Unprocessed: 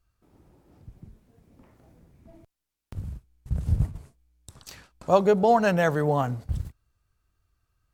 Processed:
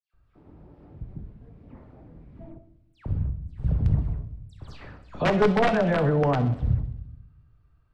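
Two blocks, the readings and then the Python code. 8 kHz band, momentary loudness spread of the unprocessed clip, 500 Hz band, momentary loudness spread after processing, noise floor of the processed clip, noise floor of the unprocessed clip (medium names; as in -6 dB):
no reading, 20 LU, -1.5 dB, 22 LU, -63 dBFS, -84 dBFS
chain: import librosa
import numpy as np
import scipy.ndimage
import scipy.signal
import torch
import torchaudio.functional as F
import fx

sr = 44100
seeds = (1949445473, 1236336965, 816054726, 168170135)

p1 = fx.peak_eq(x, sr, hz=6300.0, db=-8.0, octaves=0.51)
p2 = fx.over_compress(p1, sr, threshold_db=-29.0, ratio=-0.5)
p3 = p1 + (p2 * librosa.db_to_amplitude(-2.5))
p4 = fx.dispersion(p3, sr, late='lows', ms=137.0, hz=2600.0)
p5 = (np.mod(10.0 ** (12.0 / 20.0) * p4 + 1.0, 2.0) - 1.0) / 10.0 ** (12.0 / 20.0)
p6 = fx.spacing_loss(p5, sr, db_at_10k=31)
p7 = p6 + fx.echo_wet_highpass(p6, sr, ms=64, feedback_pct=67, hz=3100.0, wet_db=-13.5, dry=0)
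y = fx.room_shoebox(p7, sr, seeds[0], volume_m3=240.0, walls='mixed', distance_m=0.39)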